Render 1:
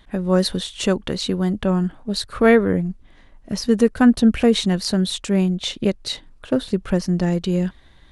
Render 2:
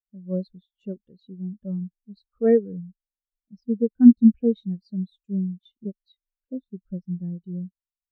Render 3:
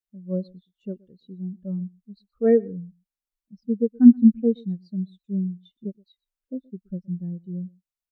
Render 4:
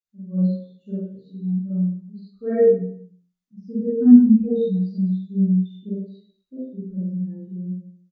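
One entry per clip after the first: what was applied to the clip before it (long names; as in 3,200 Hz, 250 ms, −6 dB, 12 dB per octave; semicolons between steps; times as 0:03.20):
every bin expanded away from the loudest bin 2.5 to 1
slap from a distant wall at 21 metres, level −25 dB
double-tracking delay 15 ms −4 dB; convolution reverb RT60 0.60 s, pre-delay 33 ms, DRR −11 dB; level −13.5 dB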